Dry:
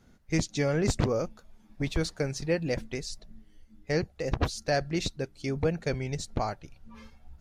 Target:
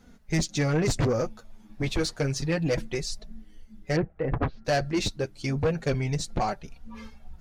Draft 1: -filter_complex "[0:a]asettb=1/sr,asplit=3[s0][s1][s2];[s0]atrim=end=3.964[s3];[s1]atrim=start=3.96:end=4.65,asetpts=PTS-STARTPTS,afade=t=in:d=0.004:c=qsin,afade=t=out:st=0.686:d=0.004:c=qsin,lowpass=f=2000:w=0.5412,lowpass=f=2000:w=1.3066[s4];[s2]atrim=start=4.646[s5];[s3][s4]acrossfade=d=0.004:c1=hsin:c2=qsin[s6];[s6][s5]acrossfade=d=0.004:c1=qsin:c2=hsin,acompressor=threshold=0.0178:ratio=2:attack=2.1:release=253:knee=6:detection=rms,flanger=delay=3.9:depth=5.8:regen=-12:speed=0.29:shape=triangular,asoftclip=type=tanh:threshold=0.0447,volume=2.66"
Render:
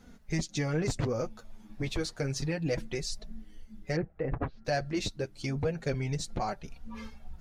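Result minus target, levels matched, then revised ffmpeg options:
compression: peak gain reduction +10.5 dB
-filter_complex "[0:a]asettb=1/sr,asplit=3[s0][s1][s2];[s0]atrim=end=3.964[s3];[s1]atrim=start=3.96:end=4.65,asetpts=PTS-STARTPTS,afade=t=in:d=0.004:c=qsin,afade=t=out:st=0.686:d=0.004:c=qsin,lowpass=f=2000:w=0.5412,lowpass=f=2000:w=1.3066[s4];[s2]atrim=start=4.646[s5];[s3][s4]acrossfade=d=0.004:c1=hsin:c2=qsin[s6];[s6][s5]acrossfade=d=0.004:c1=qsin:c2=hsin,flanger=delay=3.9:depth=5.8:regen=-12:speed=0.29:shape=triangular,asoftclip=type=tanh:threshold=0.0447,volume=2.66"

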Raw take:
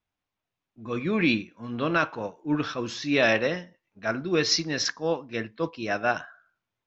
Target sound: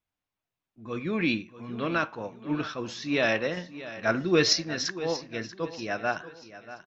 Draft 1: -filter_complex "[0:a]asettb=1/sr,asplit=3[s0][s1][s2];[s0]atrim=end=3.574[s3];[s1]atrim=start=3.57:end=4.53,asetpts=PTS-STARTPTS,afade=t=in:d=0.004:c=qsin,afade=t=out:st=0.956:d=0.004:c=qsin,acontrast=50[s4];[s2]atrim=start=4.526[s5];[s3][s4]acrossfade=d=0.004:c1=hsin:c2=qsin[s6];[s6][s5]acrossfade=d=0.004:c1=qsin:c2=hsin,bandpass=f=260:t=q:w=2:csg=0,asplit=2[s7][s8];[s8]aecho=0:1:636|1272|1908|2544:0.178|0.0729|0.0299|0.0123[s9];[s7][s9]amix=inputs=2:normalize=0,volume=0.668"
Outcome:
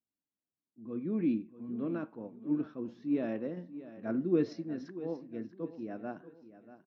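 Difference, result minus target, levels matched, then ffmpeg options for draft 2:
250 Hz band +5.5 dB
-filter_complex "[0:a]asettb=1/sr,asplit=3[s0][s1][s2];[s0]atrim=end=3.574[s3];[s1]atrim=start=3.57:end=4.53,asetpts=PTS-STARTPTS,afade=t=in:d=0.004:c=qsin,afade=t=out:st=0.956:d=0.004:c=qsin,acontrast=50[s4];[s2]atrim=start=4.526[s5];[s3][s4]acrossfade=d=0.004:c1=hsin:c2=qsin[s6];[s6][s5]acrossfade=d=0.004:c1=qsin:c2=hsin,asplit=2[s7][s8];[s8]aecho=0:1:636|1272|1908|2544:0.178|0.0729|0.0299|0.0123[s9];[s7][s9]amix=inputs=2:normalize=0,volume=0.668"

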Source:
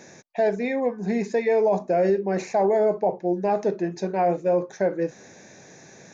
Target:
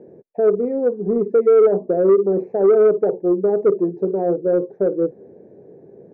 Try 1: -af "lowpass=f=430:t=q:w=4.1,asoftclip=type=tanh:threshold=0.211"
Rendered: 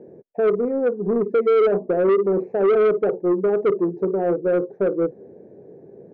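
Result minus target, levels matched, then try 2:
saturation: distortion +8 dB
-af "lowpass=f=430:t=q:w=4.1,asoftclip=type=tanh:threshold=0.447"

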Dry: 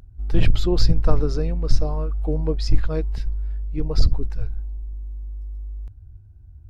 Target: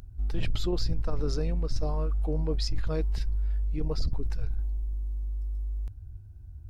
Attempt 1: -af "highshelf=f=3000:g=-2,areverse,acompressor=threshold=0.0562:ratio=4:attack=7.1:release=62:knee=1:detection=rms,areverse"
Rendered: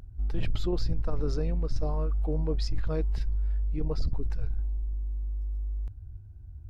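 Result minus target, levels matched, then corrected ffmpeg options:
8 kHz band -6.0 dB
-af "highshelf=f=3000:g=6,areverse,acompressor=threshold=0.0562:ratio=4:attack=7.1:release=62:knee=1:detection=rms,areverse"

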